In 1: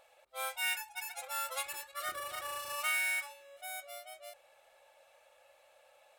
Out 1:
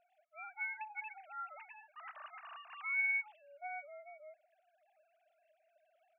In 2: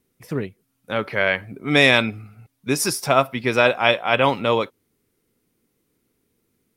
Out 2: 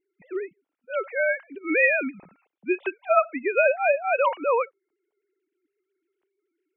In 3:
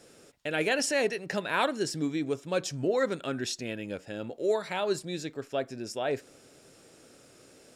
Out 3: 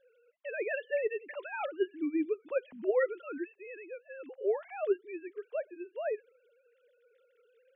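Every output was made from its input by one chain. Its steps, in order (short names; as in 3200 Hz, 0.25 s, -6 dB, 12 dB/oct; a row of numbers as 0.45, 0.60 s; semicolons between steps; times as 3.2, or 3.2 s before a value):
sine-wave speech; gain -4 dB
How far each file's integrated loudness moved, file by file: -3.0, -4.5, -4.5 LU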